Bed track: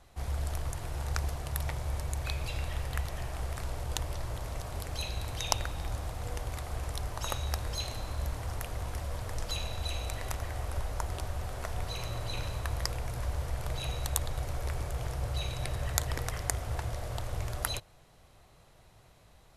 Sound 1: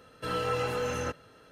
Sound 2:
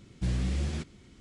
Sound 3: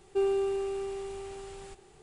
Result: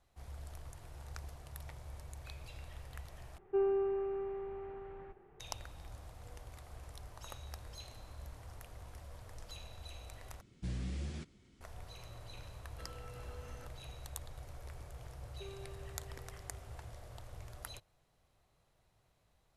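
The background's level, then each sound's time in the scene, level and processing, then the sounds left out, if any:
bed track −14.5 dB
0:03.38: overwrite with 3 −4 dB + low-pass filter 1,900 Hz 24 dB per octave
0:10.41: overwrite with 2 −10 dB
0:12.56: mix in 1 −14.5 dB + downward compressor, threshold −36 dBFS
0:15.25: mix in 3 −8.5 dB + resonators tuned to a chord C#2 sus4, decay 0.27 s

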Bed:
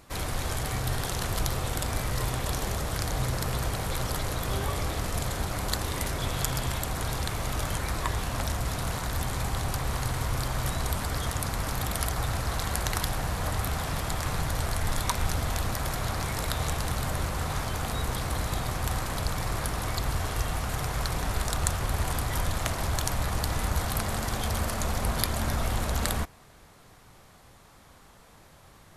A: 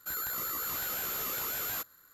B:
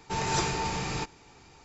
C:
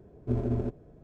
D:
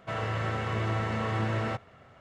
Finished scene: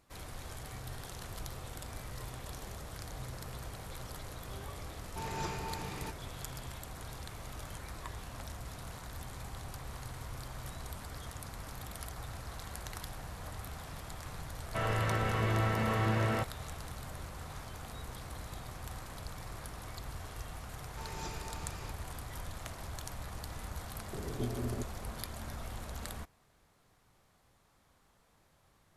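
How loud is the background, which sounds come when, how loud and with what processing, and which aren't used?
bed −14.5 dB
0:05.06: mix in B −9.5 dB + high-shelf EQ 3,700 Hz −8.5 dB
0:14.67: mix in D −1 dB
0:20.87: mix in B −16.5 dB
0:24.13: mix in C −8 dB + multiband upward and downward compressor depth 100%
not used: A

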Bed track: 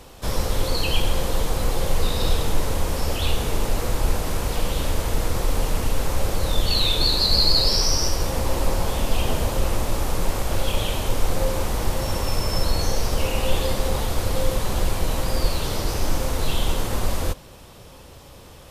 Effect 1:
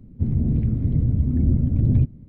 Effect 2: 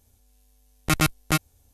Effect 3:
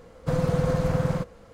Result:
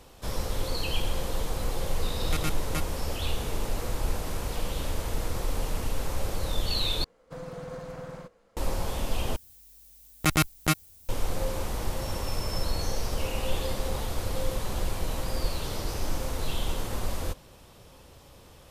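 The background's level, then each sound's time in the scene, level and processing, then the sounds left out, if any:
bed track −7.5 dB
0:01.43: mix in 2 −11.5 dB
0:07.04: overwrite with 3 −11.5 dB + parametric band 80 Hz −13 dB 2.1 octaves
0:09.36: overwrite with 2 −2 dB + background noise violet −52 dBFS
not used: 1

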